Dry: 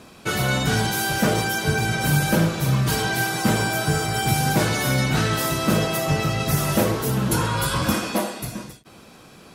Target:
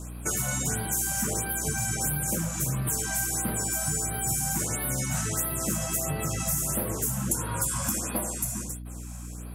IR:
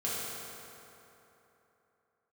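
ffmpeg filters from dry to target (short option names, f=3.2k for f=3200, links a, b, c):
-af "highshelf=f=5.5k:t=q:w=3:g=10.5,acompressor=threshold=-23dB:ratio=4,aeval=exprs='val(0)+0.02*(sin(2*PI*60*n/s)+sin(2*PI*2*60*n/s)/2+sin(2*PI*3*60*n/s)/3+sin(2*PI*4*60*n/s)/4+sin(2*PI*5*60*n/s)/5)':c=same,afftfilt=real='re*(1-between(b*sr/1024,340*pow(7000/340,0.5+0.5*sin(2*PI*1.5*pts/sr))/1.41,340*pow(7000/340,0.5+0.5*sin(2*PI*1.5*pts/sr))*1.41))':imag='im*(1-between(b*sr/1024,340*pow(7000/340,0.5+0.5*sin(2*PI*1.5*pts/sr))/1.41,340*pow(7000/340,0.5+0.5*sin(2*PI*1.5*pts/sr))*1.41))':win_size=1024:overlap=0.75,volume=-3.5dB"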